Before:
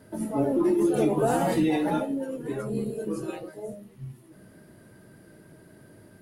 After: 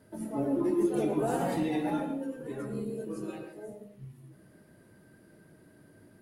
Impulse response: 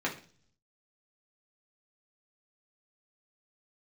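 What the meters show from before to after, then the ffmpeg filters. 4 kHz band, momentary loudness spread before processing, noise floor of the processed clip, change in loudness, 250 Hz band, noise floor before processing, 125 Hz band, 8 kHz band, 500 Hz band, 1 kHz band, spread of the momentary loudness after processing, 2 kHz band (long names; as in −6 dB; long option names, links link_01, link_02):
−6.5 dB, 18 LU, −59 dBFS, −5.5 dB, −5.0 dB, −54 dBFS, −6.0 dB, −7.0 dB, −6.0 dB, −6.0 dB, 18 LU, −6.0 dB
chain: -filter_complex "[0:a]asplit=2[link_01][link_02];[1:a]atrim=start_sample=2205,adelay=110[link_03];[link_02][link_03]afir=irnorm=-1:irlink=0,volume=-13dB[link_04];[link_01][link_04]amix=inputs=2:normalize=0,volume=-7dB"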